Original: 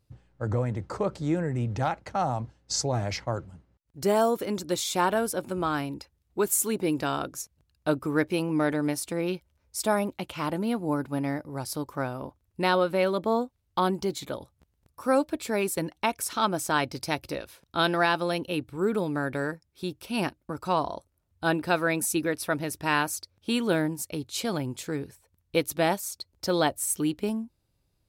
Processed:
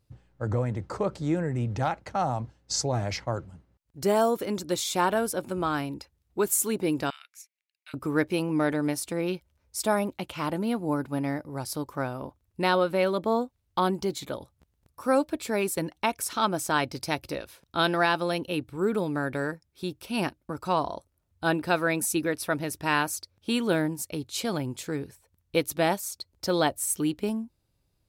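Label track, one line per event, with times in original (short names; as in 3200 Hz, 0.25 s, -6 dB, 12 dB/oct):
7.100000	7.940000	ladder high-pass 2000 Hz, resonance 70%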